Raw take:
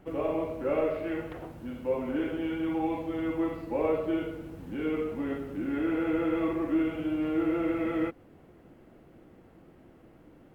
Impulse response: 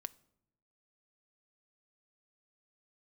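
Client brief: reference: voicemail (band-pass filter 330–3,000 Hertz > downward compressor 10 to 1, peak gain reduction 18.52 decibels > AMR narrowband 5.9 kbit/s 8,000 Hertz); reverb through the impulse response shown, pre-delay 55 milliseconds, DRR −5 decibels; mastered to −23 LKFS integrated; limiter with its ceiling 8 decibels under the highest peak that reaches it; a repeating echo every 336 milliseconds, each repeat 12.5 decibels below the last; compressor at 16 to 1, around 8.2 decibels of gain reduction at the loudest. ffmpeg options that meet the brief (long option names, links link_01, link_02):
-filter_complex "[0:a]acompressor=threshold=-31dB:ratio=16,alimiter=level_in=7.5dB:limit=-24dB:level=0:latency=1,volume=-7.5dB,aecho=1:1:336|672|1008:0.237|0.0569|0.0137,asplit=2[link_01][link_02];[1:a]atrim=start_sample=2205,adelay=55[link_03];[link_02][link_03]afir=irnorm=-1:irlink=0,volume=8.5dB[link_04];[link_01][link_04]amix=inputs=2:normalize=0,highpass=330,lowpass=3000,acompressor=threshold=-48dB:ratio=10,volume=29.5dB" -ar 8000 -c:a libopencore_amrnb -b:a 5900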